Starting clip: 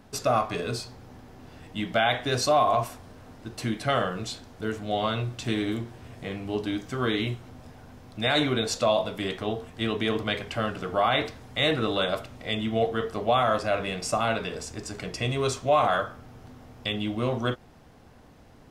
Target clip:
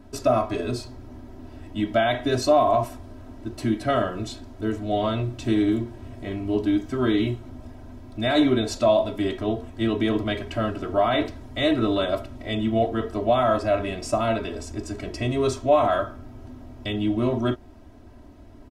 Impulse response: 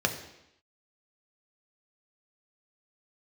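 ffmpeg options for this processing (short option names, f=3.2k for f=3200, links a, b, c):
-af "tiltshelf=f=660:g=5.5,aecho=1:1:3.1:0.89"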